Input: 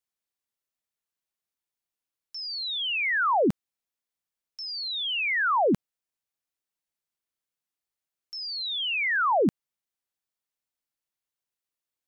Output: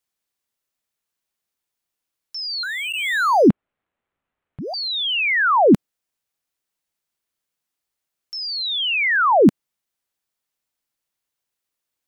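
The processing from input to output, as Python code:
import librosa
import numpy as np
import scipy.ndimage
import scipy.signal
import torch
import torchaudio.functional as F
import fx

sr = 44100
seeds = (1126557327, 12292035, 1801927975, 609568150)

y = fx.dynamic_eq(x, sr, hz=260.0, q=1.0, threshold_db=-36.0, ratio=4.0, max_db=5)
y = fx.resample_linear(y, sr, factor=8, at=(2.63, 4.74))
y = y * 10.0 ** (7.0 / 20.0)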